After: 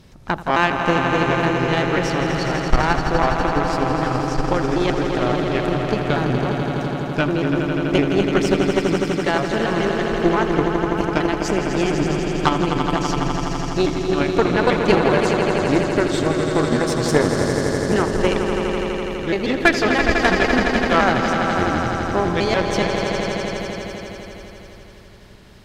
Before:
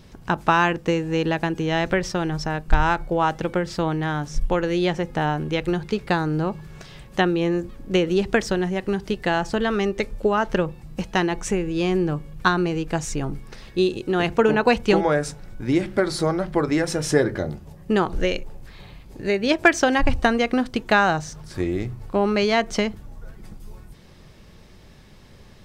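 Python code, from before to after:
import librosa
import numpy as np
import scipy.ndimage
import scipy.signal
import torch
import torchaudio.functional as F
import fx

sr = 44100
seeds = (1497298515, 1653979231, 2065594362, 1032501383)

y = fx.pitch_trill(x, sr, semitones=-3.5, every_ms=140)
y = fx.echo_swell(y, sr, ms=83, loudest=5, wet_db=-8.0)
y = fx.cheby_harmonics(y, sr, harmonics=(4,), levels_db=(-15,), full_scale_db=-2.5)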